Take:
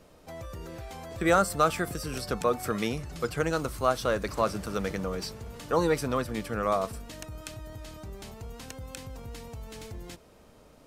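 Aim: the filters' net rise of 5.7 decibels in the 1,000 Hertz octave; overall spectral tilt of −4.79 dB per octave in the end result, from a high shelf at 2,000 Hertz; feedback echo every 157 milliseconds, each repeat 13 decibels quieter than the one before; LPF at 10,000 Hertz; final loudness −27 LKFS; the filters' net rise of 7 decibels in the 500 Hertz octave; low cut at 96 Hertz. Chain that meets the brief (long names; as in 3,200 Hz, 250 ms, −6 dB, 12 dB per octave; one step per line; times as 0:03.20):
high-pass filter 96 Hz
low-pass filter 10,000 Hz
parametric band 500 Hz +6.5 dB
parametric band 1,000 Hz +7 dB
high-shelf EQ 2,000 Hz −3.5 dB
repeating echo 157 ms, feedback 22%, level −13 dB
level −3.5 dB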